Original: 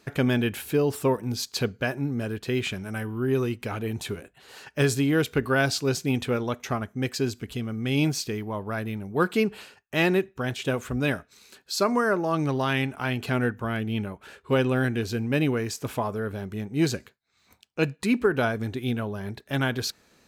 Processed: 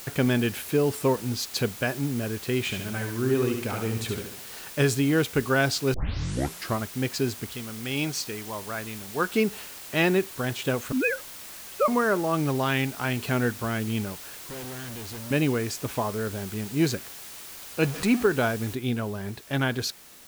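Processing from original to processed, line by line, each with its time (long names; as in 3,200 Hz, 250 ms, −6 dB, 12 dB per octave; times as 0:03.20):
0:01.56–0:02.04: parametric band 11,000 Hz +7 dB 0.59 octaves
0:02.62–0:04.64: repeating echo 71 ms, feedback 45%, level −5.5 dB
0:05.94: tape start 0.86 s
0:07.50–0:09.34: low-shelf EQ 450 Hz −8.5 dB
0:10.92–0:11.88: three sine waves on the formant tracks
0:12.85–0:13.55: floating-point word with a short mantissa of 4 bits
0:14.20–0:15.31: tube saturation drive 37 dB, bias 0.6
0:16.11–0:16.66: one half of a high-frequency compander encoder only
0:17.83–0:18.23: converter with a step at zero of −30.5 dBFS
0:18.75: noise floor change −42 dB −50 dB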